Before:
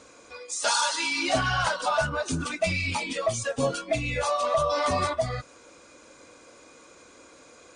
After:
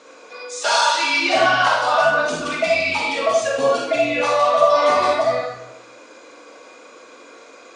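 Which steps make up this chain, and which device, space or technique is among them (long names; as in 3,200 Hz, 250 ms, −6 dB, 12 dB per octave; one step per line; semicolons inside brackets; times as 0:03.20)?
supermarket ceiling speaker (band-pass filter 330–5,100 Hz; convolution reverb RT60 0.95 s, pre-delay 31 ms, DRR −2.5 dB)
level +5 dB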